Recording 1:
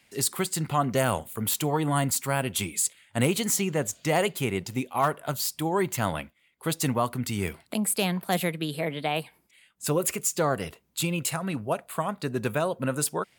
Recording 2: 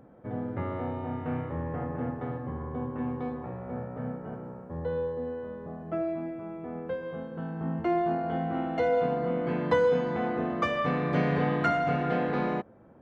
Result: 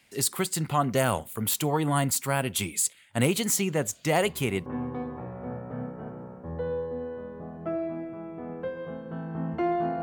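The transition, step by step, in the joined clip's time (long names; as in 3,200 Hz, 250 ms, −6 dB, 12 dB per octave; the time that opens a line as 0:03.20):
recording 1
0:04.24: mix in recording 2 from 0:02.50 0.42 s −12 dB
0:04.66: continue with recording 2 from 0:02.92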